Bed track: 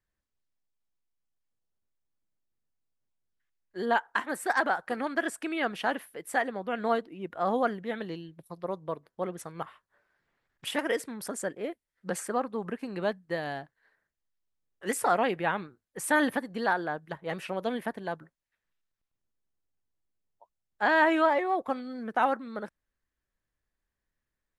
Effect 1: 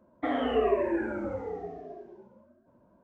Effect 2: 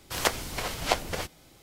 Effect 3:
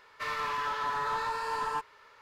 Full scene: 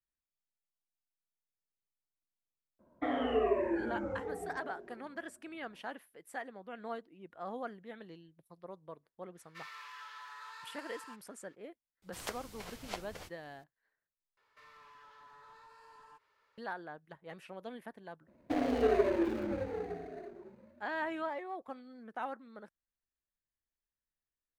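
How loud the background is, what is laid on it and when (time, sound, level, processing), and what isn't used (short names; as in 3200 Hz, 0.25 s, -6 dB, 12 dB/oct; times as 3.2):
bed track -14 dB
2.79 add 1 -4.5 dB
9.35 add 3 -11.5 dB, fades 0.02 s + HPF 1500 Hz
12.02 add 2 -16 dB
14.37 replace with 3 -17 dB + compressor 2.5:1, threshold -42 dBFS
18.27 add 1 -1 dB + median filter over 41 samples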